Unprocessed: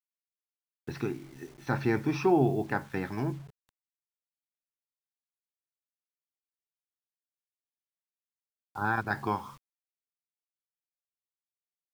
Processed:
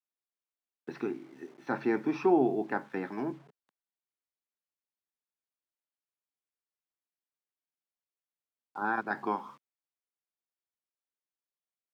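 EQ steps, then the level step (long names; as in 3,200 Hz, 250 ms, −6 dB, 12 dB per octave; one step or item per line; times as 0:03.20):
high-pass filter 210 Hz 24 dB per octave
low-pass filter 1,800 Hz 6 dB per octave
0.0 dB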